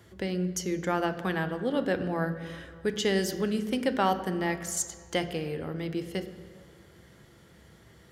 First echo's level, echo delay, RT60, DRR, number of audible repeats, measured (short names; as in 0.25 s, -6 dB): none, none, 2.2 s, 8.5 dB, none